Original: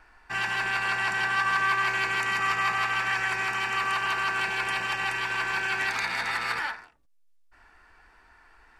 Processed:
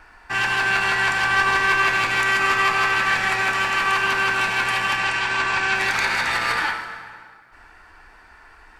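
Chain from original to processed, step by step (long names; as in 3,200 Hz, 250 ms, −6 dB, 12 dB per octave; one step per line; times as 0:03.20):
one-sided soft clipper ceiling −25.5 dBFS
0:04.97–0:05.75: low-pass filter 8,700 Hz 24 dB per octave
dense smooth reverb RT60 2.1 s, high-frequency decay 0.7×, DRR 5.5 dB
level +8 dB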